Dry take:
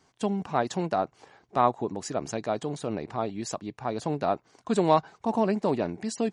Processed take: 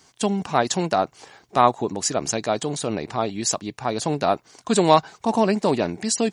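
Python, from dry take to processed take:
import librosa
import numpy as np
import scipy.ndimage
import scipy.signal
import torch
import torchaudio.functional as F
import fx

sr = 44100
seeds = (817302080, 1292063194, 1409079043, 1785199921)

y = fx.high_shelf(x, sr, hz=2800.0, db=11.5)
y = y * librosa.db_to_amplitude(5.0)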